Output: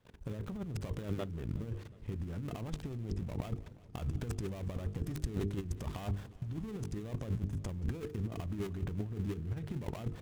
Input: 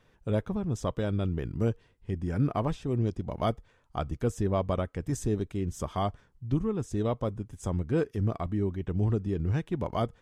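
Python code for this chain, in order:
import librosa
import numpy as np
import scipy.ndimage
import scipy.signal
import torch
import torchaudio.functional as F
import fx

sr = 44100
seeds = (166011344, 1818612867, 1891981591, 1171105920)

y = fx.dead_time(x, sr, dead_ms=0.24)
y = fx.highpass(y, sr, hz=77.0, slope=6)
y = fx.level_steps(y, sr, step_db=22)
y = fx.hum_notches(y, sr, base_hz=50, count=9)
y = fx.over_compress(y, sr, threshold_db=-49.0, ratio=-0.5)
y = fx.low_shelf(y, sr, hz=190.0, db=9.5)
y = fx.echo_warbled(y, sr, ms=183, feedback_pct=77, rate_hz=2.8, cents=202, wet_db=-20.0)
y = y * 10.0 ** (7.5 / 20.0)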